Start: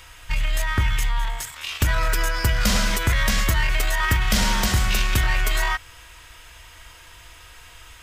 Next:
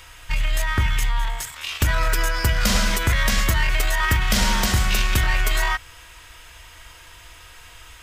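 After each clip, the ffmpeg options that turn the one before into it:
-af "bandreject=f=52.23:t=h:w=4,bandreject=f=104.46:t=h:w=4,bandreject=f=156.69:t=h:w=4,bandreject=f=208.92:t=h:w=4,bandreject=f=261.15:t=h:w=4,volume=1dB"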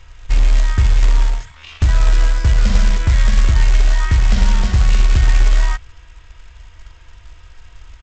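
-af "aemphasis=mode=reproduction:type=bsi,aresample=16000,acrusher=bits=5:mode=log:mix=0:aa=0.000001,aresample=44100,volume=-5dB"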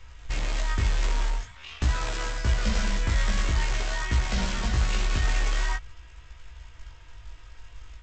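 -filter_complex "[0:a]acrossover=split=200[a][b];[a]alimiter=limit=-14.5dB:level=0:latency=1[c];[c][b]amix=inputs=2:normalize=0,flanger=delay=16:depth=4.1:speed=0.47,volume=-2dB"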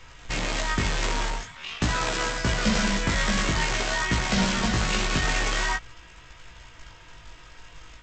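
-af "lowshelf=f=110:t=q:w=1.5:g=-10,volume=6.5dB"

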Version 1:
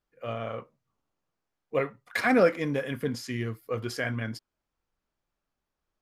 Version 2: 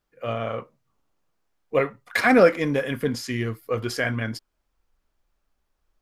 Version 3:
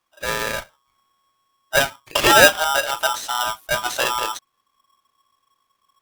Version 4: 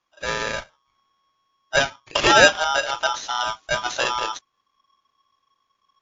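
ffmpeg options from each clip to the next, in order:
-af "asubboost=boost=3.5:cutoff=60,volume=6dB"
-af "aeval=exprs='val(0)*sgn(sin(2*PI*1100*n/s))':c=same,volume=3.5dB"
-af "volume=-1dB" -ar 16000 -c:a libmp3lame -b:a 64k

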